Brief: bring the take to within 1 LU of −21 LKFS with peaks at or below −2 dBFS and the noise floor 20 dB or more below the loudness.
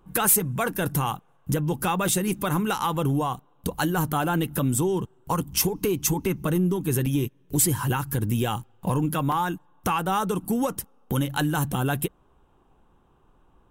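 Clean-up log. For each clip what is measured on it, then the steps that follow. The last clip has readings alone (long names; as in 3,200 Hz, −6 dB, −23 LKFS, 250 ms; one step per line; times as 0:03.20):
number of dropouts 4; longest dropout 2.5 ms; integrated loudness −25.5 LKFS; sample peak −9.5 dBFS; target loudness −21.0 LKFS
→ repair the gap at 0:02.08/0:05.62/0:07.06/0:09.32, 2.5 ms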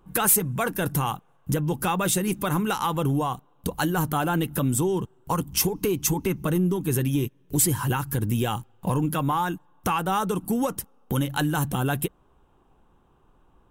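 number of dropouts 0; integrated loudness −25.5 LKFS; sample peak −9.5 dBFS; target loudness −21.0 LKFS
→ level +4.5 dB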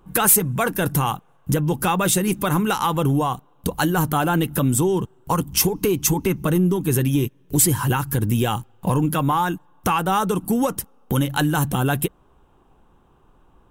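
integrated loudness −21.0 LKFS; sample peak −5.0 dBFS; background noise floor −56 dBFS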